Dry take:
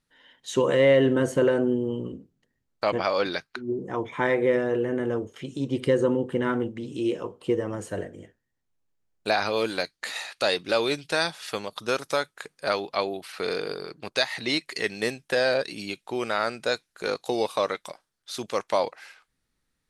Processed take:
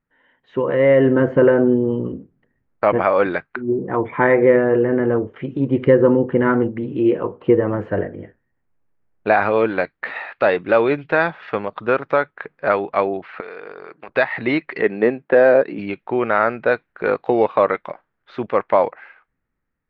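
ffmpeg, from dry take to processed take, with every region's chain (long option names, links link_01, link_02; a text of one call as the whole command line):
ffmpeg -i in.wav -filter_complex "[0:a]asettb=1/sr,asplit=3[link_01][link_02][link_03];[link_01]atrim=end=13.404[link_04];[link_02]atrim=start=13.4:end=14.09,asetpts=PTS-STARTPTS,afade=type=in:duration=0.004:curve=qsin,afade=type=out:start_time=0.686:duration=0.004:curve=qsin,highpass=frequency=910:poles=1,acompressor=threshold=-38dB:ratio=4:attack=3.2:release=140:knee=1:detection=peak[link_05];[link_03]atrim=start=14.086[link_06];[link_04][link_05]acrossfade=duration=0.004:curve1=hsin:curve2=qsin[link_07];[link_07][link_06]acrossfade=duration=0.004:curve1=qsin:curve2=hsin,asettb=1/sr,asplit=3[link_08][link_09][link_10];[link_08]atrim=end=14.814[link_11];[link_09]atrim=start=14.81:end=15.79,asetpts=PTS-STARTPTS,afade=type=in:duration=0.004:curve=qsin,afade=type=out:start_time=0.976:duration=0.004:curve=qsin,highpass=230,tiltshelf=frequency=830:gain=5.5[link_12];[link_10]atrim=start=15.786[link_13];[link_11][link_12]acrossfade=duration=0.004:curve1=hsin:curve2=qsin[link_14];[link_14][link_13]acrossfade=duration=0.004:curve1=qsin:curve2=hsin,lowpass=frequency=2100:width=0.5412,lowpass=frequency=2100:width=1.3066,dynaudnorm=framelen=110:gausssize=17:maxgain=12dB" out.wav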